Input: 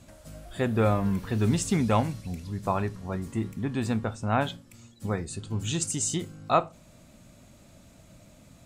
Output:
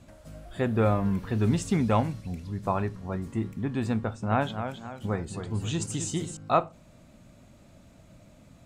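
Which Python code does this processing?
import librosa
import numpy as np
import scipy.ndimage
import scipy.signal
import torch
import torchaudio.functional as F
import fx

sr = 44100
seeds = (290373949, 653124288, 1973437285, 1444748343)

y = fx.high_shelf(x, sr, hz=3900.0, db=-8.0)
y = fx.echo_warbled(y, sr, ms=268, feedback_pct=43, rate_hz=2.8, cents=125, wet_db=-8.0, at=(3.96, 6.37))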